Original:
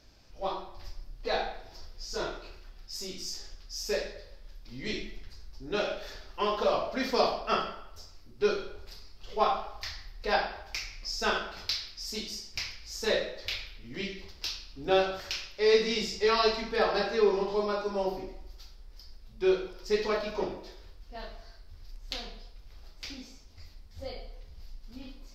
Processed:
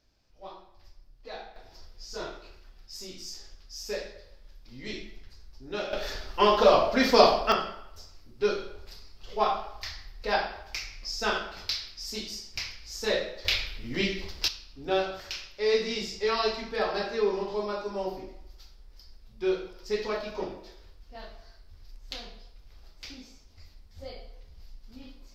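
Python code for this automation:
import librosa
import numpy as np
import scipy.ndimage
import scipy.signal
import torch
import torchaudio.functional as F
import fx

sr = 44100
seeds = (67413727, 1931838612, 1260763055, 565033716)

y = fx.gain(x, sr, db=fx.steps((0.0, -11.0), (1.56, -3.0), (5.93, 8.0), (7.52, 0.5), (13.45, 8.0), (14.48, -2.0)))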